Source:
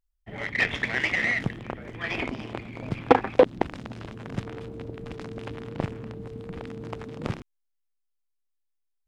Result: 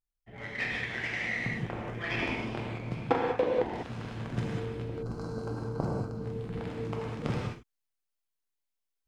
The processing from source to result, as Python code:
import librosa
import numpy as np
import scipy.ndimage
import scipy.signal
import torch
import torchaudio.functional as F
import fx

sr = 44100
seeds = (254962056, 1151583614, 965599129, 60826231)

y = fx.spec_box(x, sr, start_s=4.83, length_s=1.33, low_hz=1600.0, high_hz=3900.0, gain_db=-17)
y = fx.rev_gated(y, sr, seeds[0], gate_ms=220, shape='flat', drr_db=-3.0)
y = fx.rider(y, sr, range_db=4, speed_s=0.5)
y = y * librosa.db_to_amplitude(-8.5)